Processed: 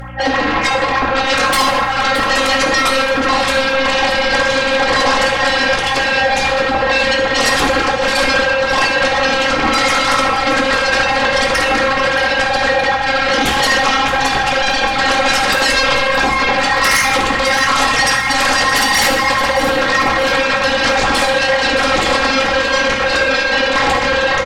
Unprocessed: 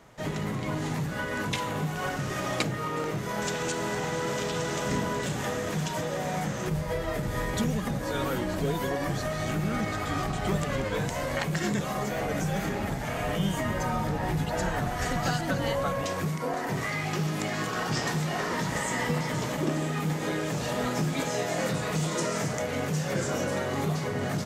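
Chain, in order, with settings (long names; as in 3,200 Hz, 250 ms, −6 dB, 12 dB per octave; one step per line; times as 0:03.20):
three sine waves on the formant tracks
in parallel at +1 dB: brickwall limiter −22 dBFS, peak gain reduction 8.5 dB
on the sum: phases set to zero 267 Hz
mains hum 60 Hz, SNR 21 dB
sine wavefolder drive 18 dB, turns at −8.5 dBFS
repeating echo 623 ms, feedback 44%, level −12 dB
convolution reverb RT60 0.95 s, pre-delay 3 ms, DRR −0.5 dB
level −4 dB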